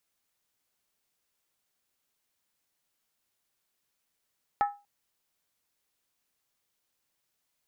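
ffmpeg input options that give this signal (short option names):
-f lavfi -i "aevalsrc='0.112*pow(10,-3*t/0.29)*sin(2*PI*815*t)+0.0447*pow(10,-3*t/0.23)*sin(2*PI*1299.1*t)+0.0178*pow(10,-3*t/0.198)*sin(2*PI*1740.8*t)+0.00708*pow(10,-3*t/0.191)*sin(2*PI*1871.2*t)+0.00282*pow(10,-3*t/0.178)*sin(2*PI*2162.2*t)':d=0.24:s=44100"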